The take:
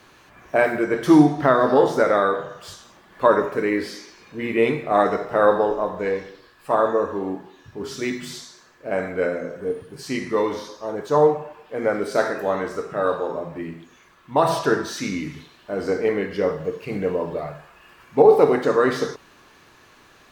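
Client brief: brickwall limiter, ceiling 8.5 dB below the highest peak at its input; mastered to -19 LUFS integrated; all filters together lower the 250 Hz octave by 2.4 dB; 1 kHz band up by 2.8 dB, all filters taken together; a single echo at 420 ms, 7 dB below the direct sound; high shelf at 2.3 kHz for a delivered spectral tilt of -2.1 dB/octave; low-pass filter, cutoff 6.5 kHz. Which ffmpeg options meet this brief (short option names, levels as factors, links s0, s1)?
-af "lowpass=6500,equalizer=f=250:t=o:g=-3.5,equalizer=f=1000:t=o:g=5.5,highshelf=f=2300:g=-9,alimiter=limit=0.335:level=0:latency=1,aecho=1:1:420:0.447,volume=1.58"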